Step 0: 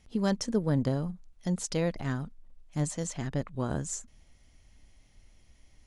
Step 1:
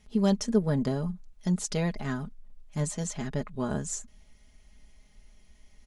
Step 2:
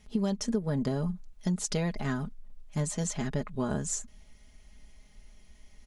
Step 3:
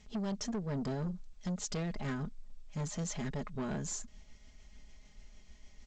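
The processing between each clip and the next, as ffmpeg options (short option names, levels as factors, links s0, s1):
-af "aecho=1:1:4.8:0.65"
-af "acompressor=threshold=0.0447:ratio=10,volume=1.26"
-af "tremolo=f=6.7:d=0.31,asoftclip=type=tanh:threshold=0.0251" -ar 16000 -c:a g722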